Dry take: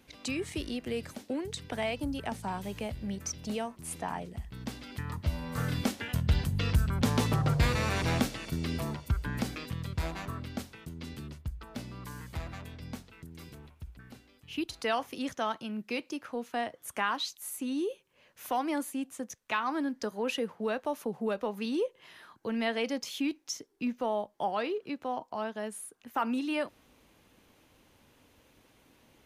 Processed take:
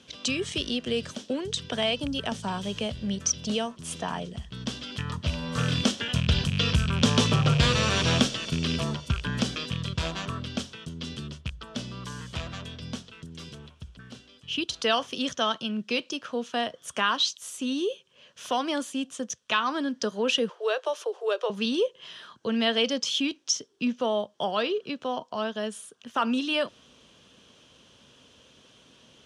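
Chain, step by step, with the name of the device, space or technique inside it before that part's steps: 20.49–21.5 steep high-pass 330 Hz 96 dB/oct; car door speaker with a rattle (rattling part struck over -30 dBFS, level -30 dBFS; speaker cabinet 85–8500 Hz, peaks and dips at 97 Hz -5 dB, 310 Hz -7 dB, 820 Hz -8 dB, 2100 Hz -8 dB, 3200 Hz +10 dB, 5700 Hz +5 dB); gain +7 dB

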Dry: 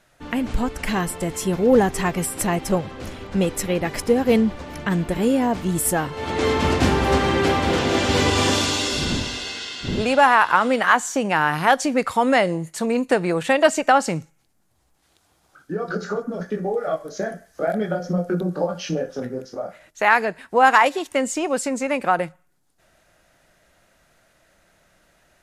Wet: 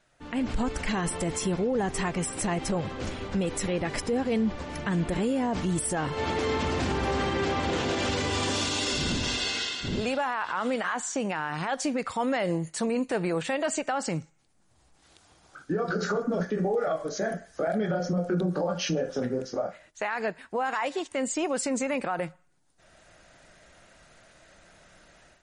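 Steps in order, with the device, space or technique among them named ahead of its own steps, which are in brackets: low-bitrate web radio (AGC gain up to 11.5 dB; limiter -12 dBFS, peak gain reduction 11.5 dB; gain -7 dB; MP3 40 kbps 44100 Hz)

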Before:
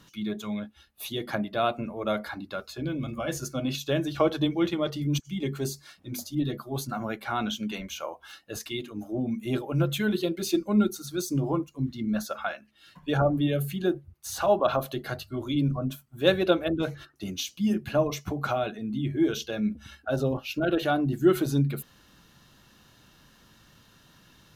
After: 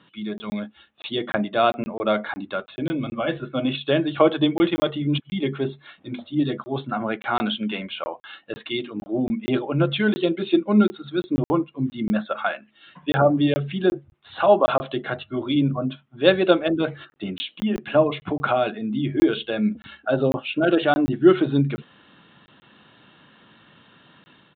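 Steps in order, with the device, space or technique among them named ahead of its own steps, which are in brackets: call with lost packets (HPF 170 Hz 12 dB/oct; downsampling 8000 Hz; AGC gain up to 5 dB; packet loss packets of 20 ms random); 17.43–17.95 bell 110 Hz -12.5 dB 1.4 oct; gain +2 dB

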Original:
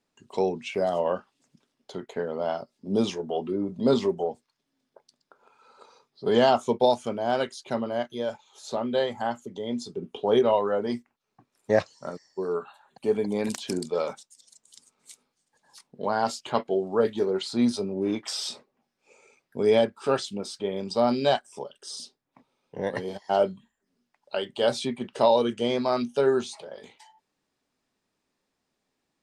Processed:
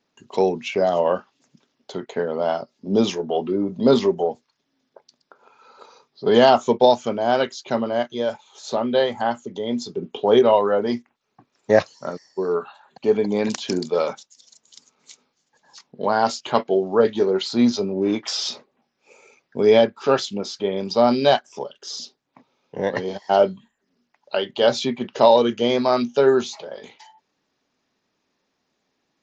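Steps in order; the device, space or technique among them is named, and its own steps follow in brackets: Bluetooth headset (HPF 110 Hz 6 dB/oct; downsampling 16000 Hz; gain +6.5 dB; SBC 64 kbps 16000 Hz)

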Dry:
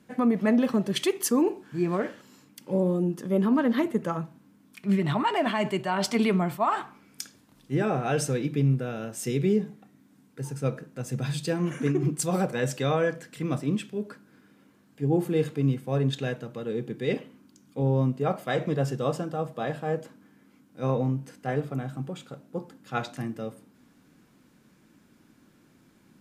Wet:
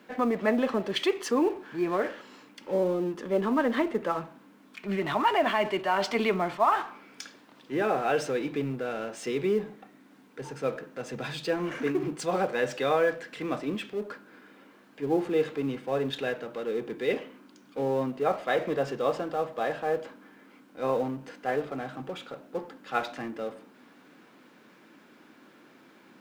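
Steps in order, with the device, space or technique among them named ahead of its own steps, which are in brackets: phone line with mismatched companding (BPF 370–3500 Hz; G.711 law mismatch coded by mu); gain +1.5 dB

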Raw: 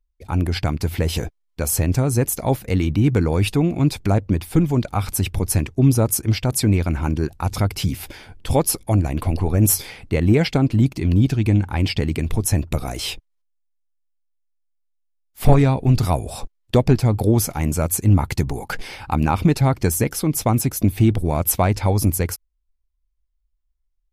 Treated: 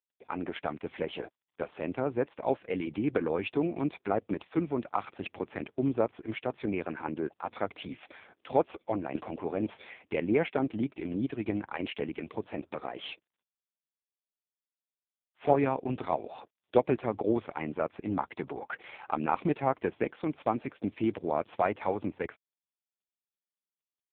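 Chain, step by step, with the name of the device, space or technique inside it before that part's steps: telephone (BPF 370–3100 Hz; gain -4 dB; AMR-NB 4.75 kbps 8000 Hz)

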